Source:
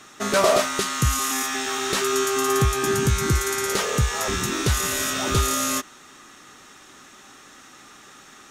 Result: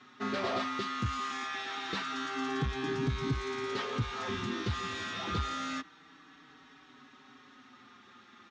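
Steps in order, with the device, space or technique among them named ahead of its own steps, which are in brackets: barber-pole flanger into a guitar amplifier (endless flanger 5 ms -0.27 Hz; saturation -18 dBFS, distortion -17 dB; cabinet simulation 76–4200 Hz, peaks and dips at 260 Hz +6 dB, 370 Hz -3 dB, 590 Hz -8 dB, 2.7 kHz -3 dB); trim -5 dB

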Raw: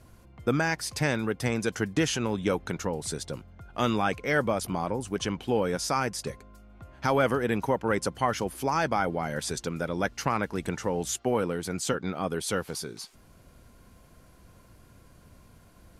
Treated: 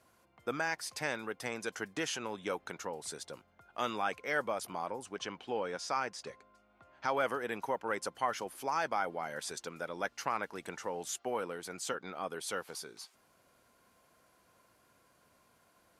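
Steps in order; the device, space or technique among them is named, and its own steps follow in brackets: 5.06–7.17 s: low-pass 6.3 kHz 12 dB/octave; filter by subtraction (in parallel: low-pass 860 Hz 12 dB/octave + polarity flip); on the sum: trim -7.5 dB

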